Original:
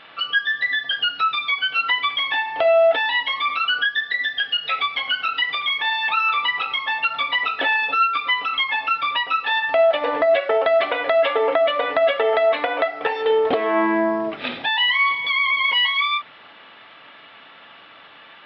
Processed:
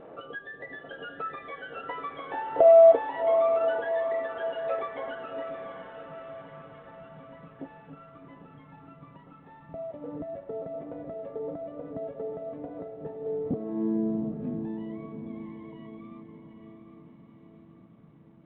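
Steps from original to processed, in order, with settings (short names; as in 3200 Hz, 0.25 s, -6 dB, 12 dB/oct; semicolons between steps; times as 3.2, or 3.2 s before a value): in parallel at -3 dB: compressor 5:1, threshold -34 dBFS, peak gain reduction 18 dB; on the sum: vibrato 0.88 Hz 7.1 cents; low-pass sweep 490 Hz -> 170 Hz, 5.08–5.91; diffused feedback echo 0.751 s, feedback 54%, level -7.5 dB; G.726 40 kbps 8000 Hz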